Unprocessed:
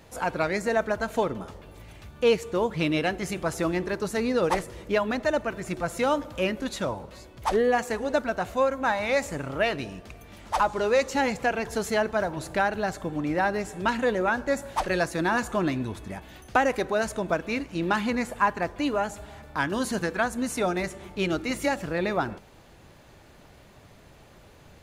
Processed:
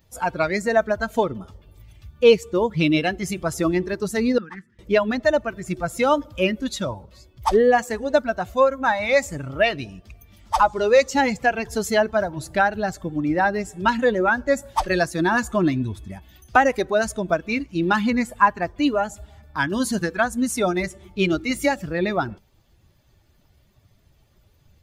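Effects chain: expander on every frequency bin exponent 1.5; 4.38–4.79 s: two resonant band-passes 600 Hz, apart 2.9 oct; trim +8.5 dB

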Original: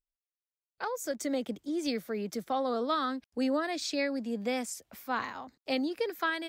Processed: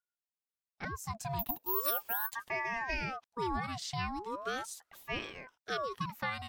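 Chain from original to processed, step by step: 1.39–2.34 s: careless resampling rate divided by 3×, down filtered, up zero stuff; ring modulator with a swept carrier 930 Hz, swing 55%, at 0.39 Hz; trim -2.5 dB

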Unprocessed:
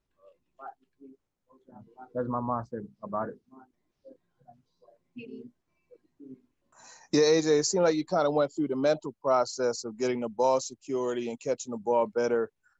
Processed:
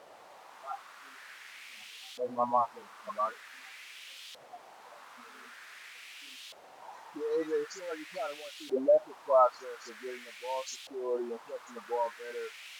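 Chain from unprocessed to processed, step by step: spectral contrast enhancement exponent 1.7; phase dispersion highs, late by 70 ms, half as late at 480 Hz; tremolo 1.6 Hz, depth 69%; in parallel at -6.5 dB: word length cut 6-bit, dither triangular; on the sum: LFO band-pass saw up 0.46 Hz 590–3400 Hz; trim +5.5 dB

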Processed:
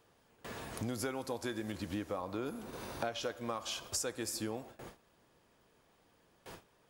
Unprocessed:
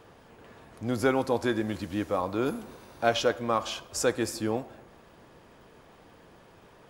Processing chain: treble shelf 3.7 kHz +10.5 dB, from 1.72 s +2.5 dB, from 3.23 s +9.5 dB; compression 8:1, threshold -41 dBFS, peak gain reduction 22.5 dB; gate with hold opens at -41 dBFS; trim +5.5 dB

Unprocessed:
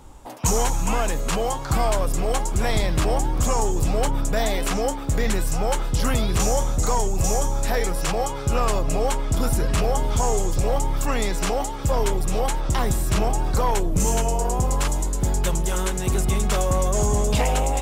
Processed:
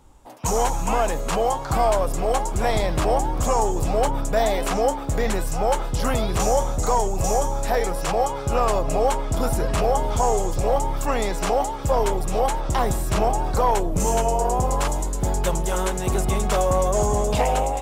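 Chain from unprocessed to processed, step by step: dynamic bell 700 Hz, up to +8 dB, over -38 dBFS, Q 0.82; level rider gain up to 7.5 dB; trim -7.5 dB

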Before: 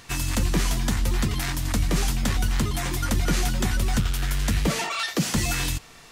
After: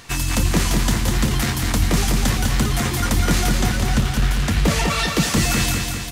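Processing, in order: 3.57–4.65 s: treble shelf 7.4 kHz -9 dB; on a send: feedback delay 199 ms, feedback 59%, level -4.5 dB; on the sum: trim +4.5 dB

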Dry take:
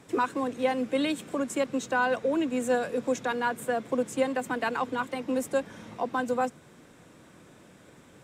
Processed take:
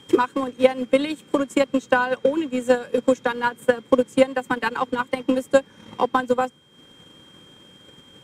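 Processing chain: Butterworth band-stop 670 Hz, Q 5.3; whistle 3.2 kHz -51 dBFS; transient shaper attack +12 dB, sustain -7 dB; trim +1.5 dB

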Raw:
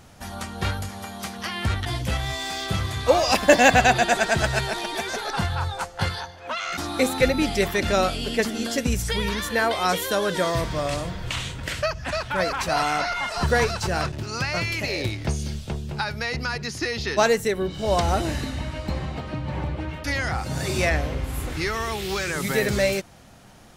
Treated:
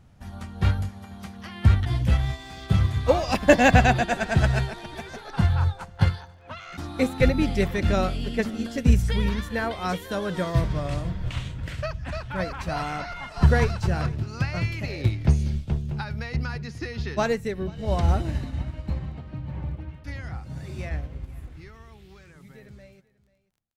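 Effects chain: fade out at the end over 7.26 s; tone controls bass +11 dB, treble -6 dB; crackle 18 per s -42 dBFS; delay 489 ms -20 dB; upward expansion 1.5:1, over -32 dBFS; trim -1 dB

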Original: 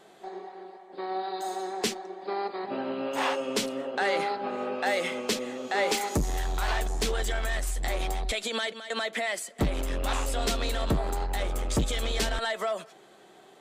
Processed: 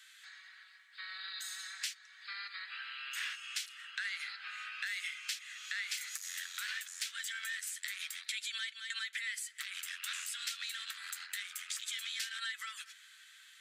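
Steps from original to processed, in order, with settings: steep high-pass 1.5 kHz 48 dB/octave; compression 3:1, threshold -44 dBFS, peak gain reduction 13.5 dB; trim +4 dB

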